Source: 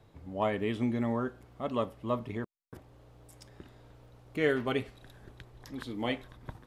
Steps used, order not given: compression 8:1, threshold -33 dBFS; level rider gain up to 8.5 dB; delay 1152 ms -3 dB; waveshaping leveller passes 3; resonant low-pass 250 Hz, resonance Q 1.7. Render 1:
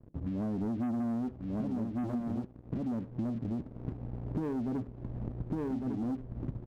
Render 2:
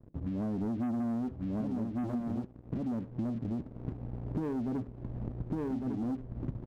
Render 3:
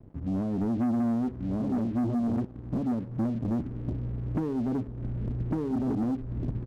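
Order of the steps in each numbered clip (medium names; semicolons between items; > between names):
resonant low-pass > waveshaping leveller > level rider > delay > compression; resonant low-pass > waveshaping leveller > delay > level rider > compression; level rider > delay > compression > resonant low-pass > waveshaping leveller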